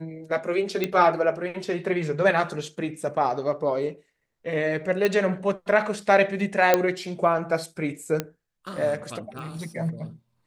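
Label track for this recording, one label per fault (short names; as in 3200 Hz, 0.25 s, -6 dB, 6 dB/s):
0.840000	0.840000	pop -11 dBFS
5.050000	5.050000	pop -10 dBFS
6.740000	6.740000	pop -4 dBFS
8.200000	8.200000	pop -11 dBFS
9.390000	9.390000	pop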